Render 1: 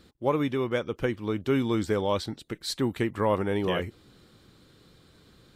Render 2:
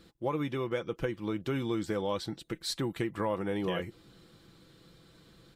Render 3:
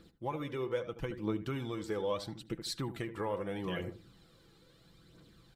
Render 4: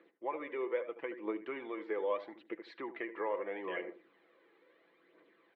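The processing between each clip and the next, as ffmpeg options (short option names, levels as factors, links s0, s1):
-af "aecho=1:1:6:0.43,acompressor=threshold=0.0398:ratio=2.5,volume=0.794"
-filter_complex "[0:a]asplit=2[s0][s1];[s1]adelay=76,lowpass=f=1200:p=1,volume=0.316,asplit=2[s2][s3];[s3]adelay=76,lowpass=f=1200:p=1,volume=0.33,asplit=2[s4][s5];[s5]adelay=76,lowpass=f=1200:p=1,volume=0.33,asplit=2[s6][s7];[s7]adelay=76,lowpass=f=1200:p=1,volume=0.33[s8];[s0][s2][s4][s6][s8]amix=inputs=5:normalize=0,aphaser=in_gain=1:out_gain=1:delay=2.5:decay=0.45:speed=0.77:type=triangular,volume=0.562"
-af "highpass=f=380:w=0.5412,highpass=f=380:w=1.3066,equalizer=f=490:t=q:w=4:g=-3,equalizer=f=790:t=q:w=4:g=-5,equalizer=f=1400:t=q:w=4:g=-9,equalizer=f=2000:t=q:w=4:g=5,lowpass=f=2200:w=0.5412,lowpass=f=2200:w=1.3066,volume=1.5"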